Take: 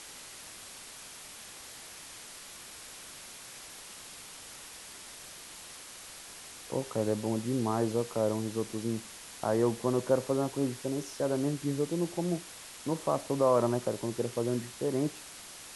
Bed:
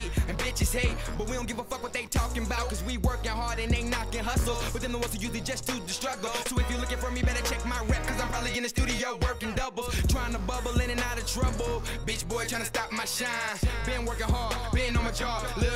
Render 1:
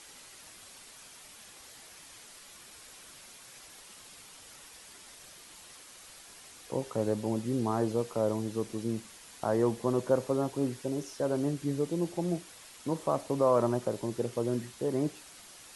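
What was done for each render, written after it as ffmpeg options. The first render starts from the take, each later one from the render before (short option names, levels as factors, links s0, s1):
-af "afftdn=nr=6:nf=-48"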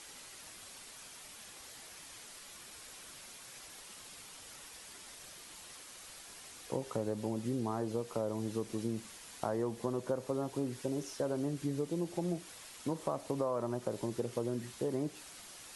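-af "acompressor=threshold=0.0282:ratio=6"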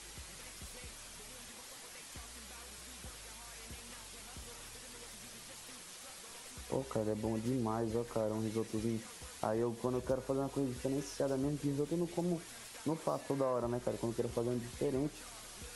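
-filter_complex "[1:a]volume=0.0501[s0];[0:a][s0]amix=inputs=2:normalize=0"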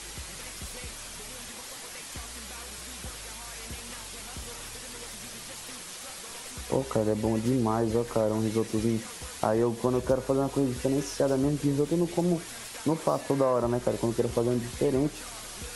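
-af "volume=2.99"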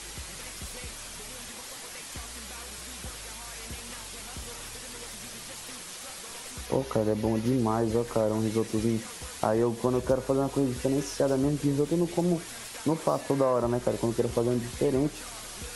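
-filter_complex "[0:a]asettb=1/sr,asplit=3[s0][s1][s2];[s0]atrim=end=6.664[s3];[s1]atrim=start=6.66:end=7.59,asetpts=PTS-STARTPTS,afade=t=in:d=0.004:c=qsin,afade=t=out:st=0.926:d=0.004:c=qsin,equalizer=f=8000:t=o:w=0.23:g=-12.5[s4];[s2]atrim=start=7.586[s5];[s3][s4]acrossfade=d=0.004:c1=hsin:c2=qsin[s6];[s6][s5]acrossfade=d=0.004:c1=qsin:c2=hsin"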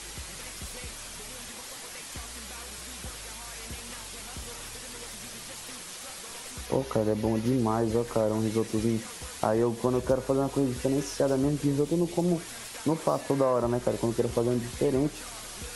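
-filter_complex "[0:a]asettb=1/sr,asplit=3[s0][s1][s2];[s0]atrim=end=11.834[s3];[s1]atrim=start=11.83:end=12.28,asetpts=PTS-STARTPTS,afade=t=in:d=0.004:c=qsin,afade=t=out:st=0.446:d=0.004:c=qsin,equalizer=f=1600:w=1.8:g=-5.5[s4];[s2]atrim=start=12.276[s5];[s3][s4]acrossfade=d=0.004:c1=hsin:c2=qsin[s6];[s6][s5]acrossfade=d=0.004:c1=qsin:c2=hsin"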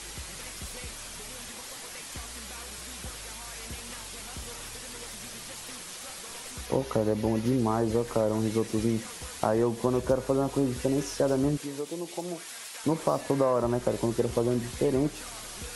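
-filter_complex "[0:a]asettb=1/sr,asplit=3[s0][s1][s2];[s0]atrim=end=11.574[s3];[s1]atrim=start=11.57:end=12.84,asetpts=PTS-STARTPTS,afade=t=in:d=0.004:c=qsin,afade=t=out:st=1.266:d=0.004:c=qsin,highpass=f=900:p=1[s4];[s2]atrim=start=12.836[s5];[s3][s4]acrossfade=d=0.004:c1=hsin:c2=qsin[s6];[s6][s5]acrossfade=d=0.004:c1=qsin:c2=hsin"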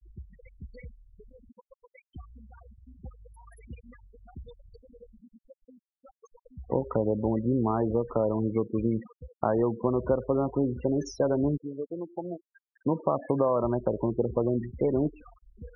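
-af "afftfilt=real='re*gte(hypot(re,im),0.0316)':imag='im*gte(hypot(re,im),0.0316)':win_size=1024:overlap=0.75"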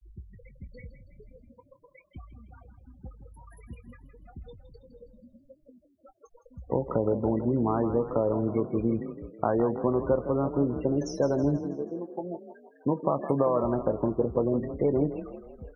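-filter_complex "[0:a]asplit=2[s0][s1];[s1]adelay=21,volume=0.237[s2];[s0][s2]amix=inputs=2:normalize=0,asplit=6[s3][s4][s5][s6][s7][s8];[s4]adelay=162,afreqshift=32,volume=0.266[s9];[s5]adelay=324,afreqshift=64,volume=0.13[s10];[s6]adelay=486,afreqshift=96,volume=0.0638[s11];[s7]adelay=648,afreqshift=128,volume=0.0313[s12];[s8]adelay=810,afreqshift=160,volume=0.0153[s13];[s3][s9][s10][s11][s12][s13]amix=inputs=6:normalize=0"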